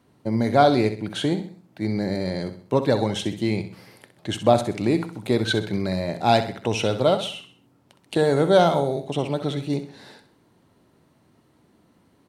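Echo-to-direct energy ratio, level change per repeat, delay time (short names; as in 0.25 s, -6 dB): -10.0 dB, -8.0 dB, 64 ms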